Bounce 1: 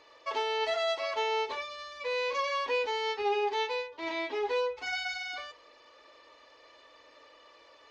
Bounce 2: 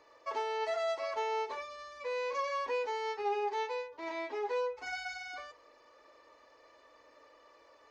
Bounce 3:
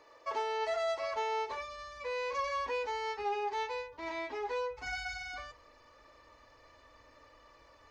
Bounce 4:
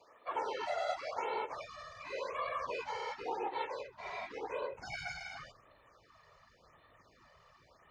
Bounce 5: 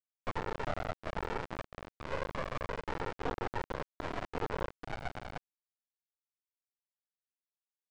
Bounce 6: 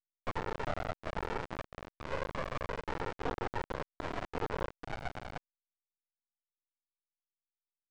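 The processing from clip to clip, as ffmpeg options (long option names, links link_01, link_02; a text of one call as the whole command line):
ffmpeg -i in.wav -filter_complex "[0:a]equalizer=frequency=3300:width=1.3:gain=-10.5,acrossover=split=350[link_01][link_02];[link_01]acompressor=threshold=-53dB:ratio=6[link_03];[link_03][link_02]amix=inputs=2:normalize=0,volume=-2dB" out.wav
ffmpeg -i in.wav -filter_complex "[0:a]asubboost=boost=8.5:cutoff=140,asplit=2[link_01][link_02];[link_02]asoftclip=type=tanh:threshold=-37.5dB,volume=-11dB[link_03];[link_01][link_03]amix=inputs=2:normalize=0" out.wav
ffmpeg -i in.wav -af "afftfilt=real='hypot(re,im)*cos(2*PI*random(0))':imag='hypot(re,im)*sin(2*PI*random(1))':win_size=512:overlap=0.75,afreqshift=22,afftfilt=real='re*(1-between(b*sr/1024,250*pow(6400/250,0.5+0.5*sin(2*PI*0.91*pts/sr))/1.41,250*pow(6400/250,0.5+0.5*sin(2*PI*0.91*pts/sr))*1.41))':imag='im*(1-between(b*sr/1024,250*pow(6400/250,0.5+0.5*sin(2*PI*0.91*pts/sr))/1.41,250*pow(6400/250,0.5+0.5*sin(2*PI*0.91*pts/sr))*1.41))':win_size=1024:overlap=0.75,volume=3dB" out.wav
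ffmpeg -i in.wav -af "acompressor=threshold=-42dB:ratio=16,aresample=11025,acrusher=bits=4:dc=4:mix=0:aa=0.000001,aresample=44100,adynamicsmooth=sensitivity=5.5:basefreq=670,volume=14dB" out.wav
ffmpeg -i in.wav -af "aeval=exprs='abs(val(0))':channel_layout=same" out.wav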